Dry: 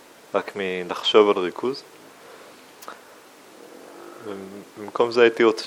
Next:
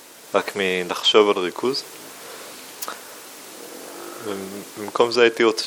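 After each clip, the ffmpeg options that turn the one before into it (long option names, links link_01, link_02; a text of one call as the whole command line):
ffmpeg -i in.wav -af "highshelf=frequency=3600:gain=11.5,dynaudnorm=framelen=200:gausssize=3:maxgain=4.5dB" out.wav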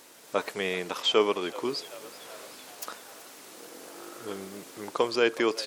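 ffmpeg -i in.wav -filter_complex "[0:a]asplit=6[link_01][link_02][link_03][link_04][link_05][link_06];[link_02]adelay=381,afreqshift=73,volume=-19dB[link_07];[link_03]adelay=762,afreqshift=146,volume=-23.3dB[link_08];[link_04]adelay=1143,afreqshift=219,volume=-27.6dB[link_09];[link_05]adelay=1524,afreqshift=292,volume=-31.9dB[link_10];[link_06]adelay=1905,afreqshift=365,volume=-36.2dB[link_11];[link_01][link_07][link_08][link_09][link_10][link_11]amix=inputs=6:normalize=0,volume=-8.5dB" out.wav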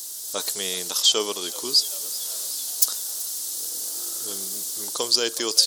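ffmpeg -i in.wav -af "aexciter=amount=12.3:drive=6:freq=3600,volume=-4dB" out.wav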